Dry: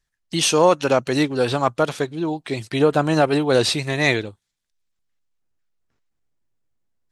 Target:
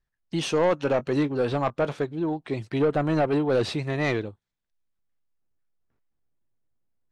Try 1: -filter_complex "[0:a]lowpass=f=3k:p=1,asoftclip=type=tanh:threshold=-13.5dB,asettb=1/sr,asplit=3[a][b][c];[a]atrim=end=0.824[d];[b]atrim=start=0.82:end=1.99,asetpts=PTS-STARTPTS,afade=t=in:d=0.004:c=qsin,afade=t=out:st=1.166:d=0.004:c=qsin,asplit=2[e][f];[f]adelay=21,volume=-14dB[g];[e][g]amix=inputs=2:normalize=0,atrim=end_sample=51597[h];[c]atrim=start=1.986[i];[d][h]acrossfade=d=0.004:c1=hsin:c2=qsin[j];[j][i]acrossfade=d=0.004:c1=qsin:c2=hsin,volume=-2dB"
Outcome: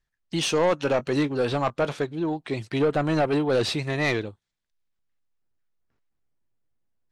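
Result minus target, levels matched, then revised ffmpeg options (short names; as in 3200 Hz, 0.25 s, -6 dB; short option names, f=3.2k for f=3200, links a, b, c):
4000 Hz band +4.5 dB
-filter_complex "[0:a]lowpass=f=1.3k:p=1,asoftclip=type=tanh:threshold=-13.5dB,asettb=1/sr,asplit=3[a][b][c];[a]atrim=end=0.824[d];[b]atrim=start=0.82:end=1.99,asetpts=PTS-STARTPTS,afade=t=in:d=0.004:c=qsin,afade=t=out:st=1.166:d=0.004:c=qsin,asplit=2[e][f];[f]adelay=21,volume=-14dB[g];[e][g]amix=inputs=2:normalize=0,atrim=end_sample=51597[h];[c]atrim=start=1.986[i];[d][h]acrossfade=d=0.004:c1=hsin:c2=qsin[j];[j][i]acrossfade=d=0.004:c1=qsin:c2=hsin,volume=-2dB"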